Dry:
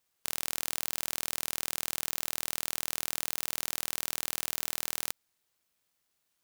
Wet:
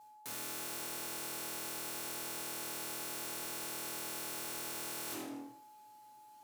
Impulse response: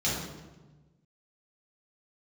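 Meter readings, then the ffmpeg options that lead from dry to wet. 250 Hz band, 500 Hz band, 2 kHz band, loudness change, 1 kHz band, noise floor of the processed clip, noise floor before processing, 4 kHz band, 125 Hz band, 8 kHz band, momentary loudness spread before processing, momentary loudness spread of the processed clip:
+2.5 dB, 0.0 dB, −6.0 dB, −7.5 dB, −2.0 dB, −58 dBFS, −79 dBFS, −7.5 dB, −5.5 dB, −7.0 dB, 1 LU, 14 LU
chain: -filter_complex "[1:a]atrim=start_sample=2205,asetrate=83790,aresample=44100[link_01];[0:a][link_01]afir=irnorm=-1:irlink=0,aeval=exprs='(mod(20*val(0)+1,2)-1)/20':channel_layout=same,areverse,acompressor=threshold=-47dB:ratio=6,areverse,aeval=exprs='val(0)+0.000891*sin(2*PI*850*n/s)':channel_layout=same,highpass=120,volume=5.5dB"

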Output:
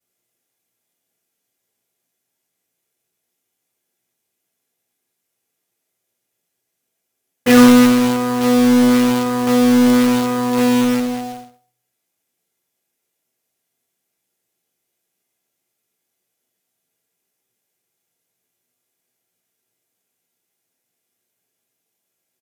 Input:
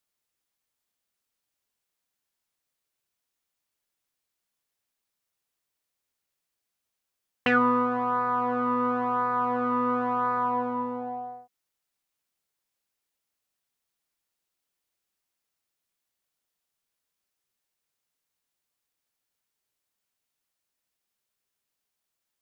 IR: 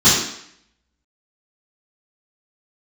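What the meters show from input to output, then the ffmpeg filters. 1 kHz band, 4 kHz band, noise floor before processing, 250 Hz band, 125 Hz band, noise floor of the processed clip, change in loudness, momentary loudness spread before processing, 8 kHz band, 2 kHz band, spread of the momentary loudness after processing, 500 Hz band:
+2.0 dB, +21.0 dB, −84 dBFS, +18.5 dB, +16.0 dB, −77 dBFS, +12.5 dB, 10 LU, can't be measured, +8.0 dB, 11 LU, +12.5 dB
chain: -filter_complex "[0:a]aecho=1:1:98:0.168[link_01];[1:a]atrim=start_sample=2205,asetrate=83790,aresample=44100[link_02];[link_01][link_02]afir=irnorm=-1:irlink=0,acrusher=bits=2:mode=log:mix=0:aa=0.000001,volume=-12dB"

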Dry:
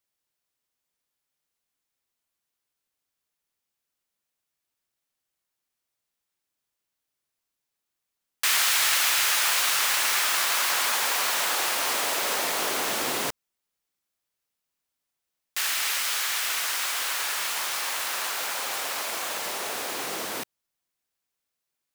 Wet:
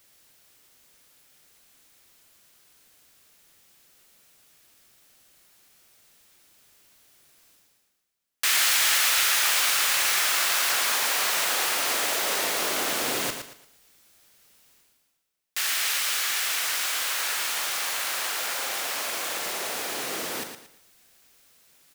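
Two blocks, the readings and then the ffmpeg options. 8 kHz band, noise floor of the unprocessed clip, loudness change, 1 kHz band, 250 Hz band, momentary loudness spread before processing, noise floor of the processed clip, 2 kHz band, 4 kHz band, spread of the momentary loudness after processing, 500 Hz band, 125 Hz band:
+1.0 dB, −84 dBFS, +1.0 dB, −1.0 dB, +1.0 dB, 10 LU, −70 dBFS, +0.5 dB, +1.0 dB, 10 LU, +0.5 dB, +1.0 dB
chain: -filter_complex "[0:a]equalizer=frequency=970:width_type=o:width=0.61:gain=-3.5,areverse,acompressor=mode=upward:threshold=-40dB:ratio=2.5,areverse,asplit=2[link_01][link_02];[link_02]adelay=41,volume=-11.5dB[link_03];[link_01][link_03]amix=inputs=2:normalize=0,aecho=1:1:114|228|342|456:0.398|0.123|0.0383|0.0119"

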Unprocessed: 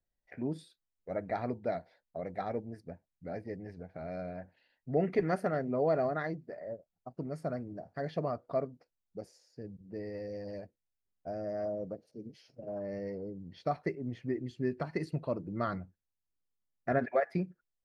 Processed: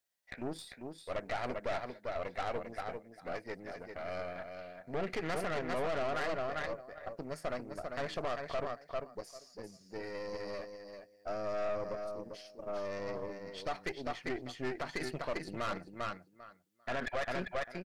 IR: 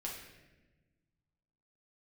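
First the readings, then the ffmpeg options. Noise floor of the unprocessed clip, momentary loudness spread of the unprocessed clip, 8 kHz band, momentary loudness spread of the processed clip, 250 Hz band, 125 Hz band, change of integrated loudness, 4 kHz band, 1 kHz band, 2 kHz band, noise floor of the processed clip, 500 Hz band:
below −85 dBFS, 17 LU, can't be measured, 11 LU, −6.5 dB, −8.0 dB, −3.0 dB, +11.0 dB, 0.0 dB, +4.0 dB, −64 dBFS, −2.5 dB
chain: -af "highpass=frequency=1400:poles=1,aecho=1:1:396|792|1188:0.473|0.0757|0.0121,alimiter=level_in=9dB:limit=-24dB:level=0:latency=1:release=42,volume=-9dB,aeval=exprs='(tanh(178*val(0)+0.8)-tanh(0.8))/178':channel_layout=same,volume=13.5dB"

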